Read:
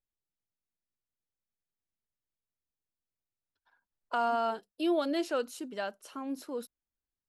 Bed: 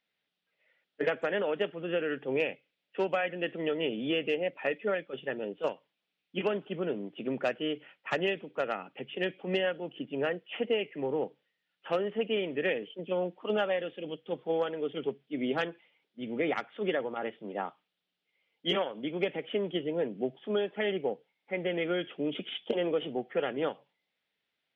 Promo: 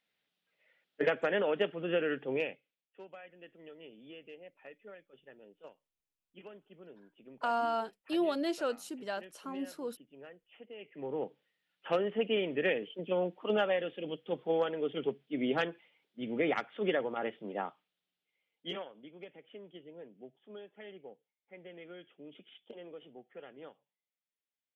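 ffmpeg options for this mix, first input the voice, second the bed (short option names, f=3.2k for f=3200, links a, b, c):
-filter_complex "[0:a]adelay=3300,volume=-2dB[a];[1:a]volume=20dB,afade=t=out:st=2.06:d=0.83:silence=0.0944061,afade=t=in:st=10.74:d=0.77:silence=0.1,afade=t=out:st=17.31:d=1.8:silence=0.125893[b];[a][b]amix=inputs=2:normalize=0"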